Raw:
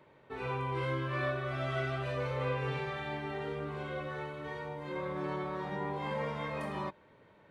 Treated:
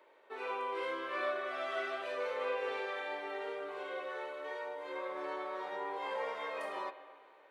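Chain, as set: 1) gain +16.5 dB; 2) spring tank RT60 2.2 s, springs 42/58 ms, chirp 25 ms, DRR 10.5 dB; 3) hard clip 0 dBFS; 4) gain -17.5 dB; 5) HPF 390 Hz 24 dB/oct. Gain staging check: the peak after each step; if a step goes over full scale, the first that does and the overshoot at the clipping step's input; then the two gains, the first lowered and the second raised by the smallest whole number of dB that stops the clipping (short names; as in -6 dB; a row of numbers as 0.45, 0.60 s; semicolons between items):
-5.0, -5.0, -5.0, -22.5, -24.5 dBFS; no overload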